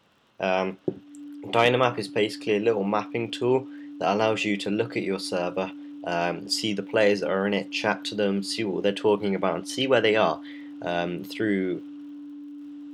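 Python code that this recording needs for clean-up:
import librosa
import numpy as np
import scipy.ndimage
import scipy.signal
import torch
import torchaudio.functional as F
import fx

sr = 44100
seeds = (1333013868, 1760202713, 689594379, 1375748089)

y = fx.fix_declick_ar(x, sr, threshold=6.5)
y = fx.notch(y, sr, hz=290.0, q=30.0)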